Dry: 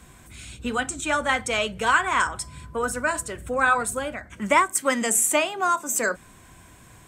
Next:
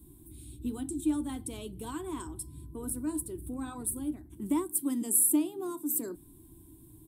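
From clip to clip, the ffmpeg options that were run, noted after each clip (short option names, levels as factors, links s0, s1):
-af "firequalizer=gain_entry='entry(140,0);entry(210,-6);entry(310,12);entry(530,-22);entry(900,-14);entry(1400,-28);entry(2200,-27);entry(3600,-12);entry(6600,-20);entry(10000,7)':delay=0.05:min_phase=1,volume=0.631"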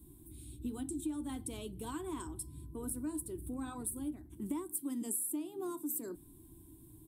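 -af "acompressor=threshold=0.0251:ratio=6,volume=0.75"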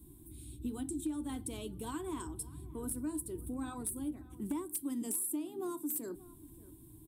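-filter_complex "[0:a]aeval=exprs='0.0376*(abs(mod(val(0)/0.0376+3,4)-2)-1)':c=same,asplit=2[s0][s1];[s1]adelay=583.1,volume=0.112,highshelf=f=4000:g=-13.1[s2];[s0][s2]amix=inputs=2:normalize=0,volume=1.12"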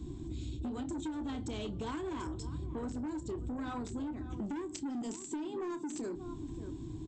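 -filter_complex "[0:a]aresample=16000,asoftclip=type=tanh:threshold=0.0106,aresample=44100,asplit=2[s0][s1];[s1]adelay=29,volume=0.237[s2];[s0][s2]amix=inputs=2:normalize=0,acompressor=threshold=0.00316:ratio=10,volume=5.01"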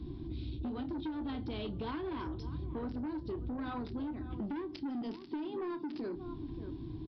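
-af "aresample=11025,aresample=44100"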